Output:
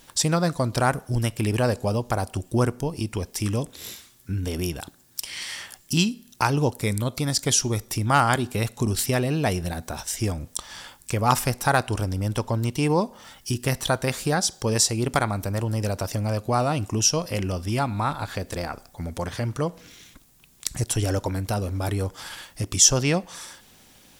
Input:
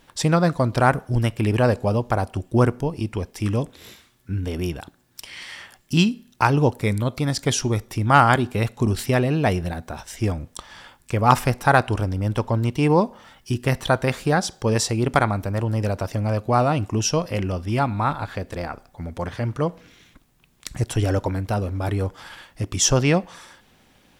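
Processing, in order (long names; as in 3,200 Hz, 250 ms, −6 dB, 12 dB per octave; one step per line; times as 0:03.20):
bass and treble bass 0 dB, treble +11 dB
in parallel at +2 dB: downward compressor, threshold −27 dBFS, peak gain reduction 20 dB
on the sum: level −6.5 dB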